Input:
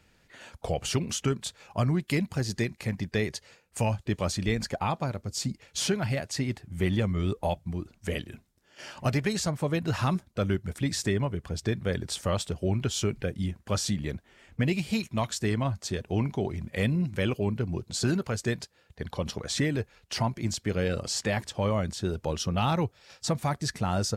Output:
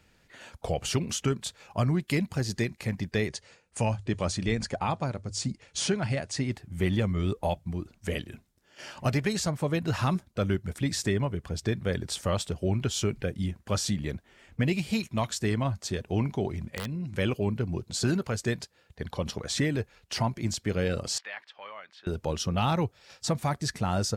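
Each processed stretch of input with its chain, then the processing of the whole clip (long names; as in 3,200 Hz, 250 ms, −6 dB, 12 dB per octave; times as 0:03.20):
0:03.28–0:06.52: Chebyshev low-pass filter 10,000 Hz, order 5 + mains-hum notches 50/100 Hz
0:16.65–0:17.17: low-pass filter 12,000 Hz + wrap-around overflow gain 15.5 dB + downward compressor 5 to 1, threshold −31 dBFS
0:21.18–0:22.07: high-pass filter 1,500 Hz + high-frequency loss of the air 370 metres
whole clip: no processing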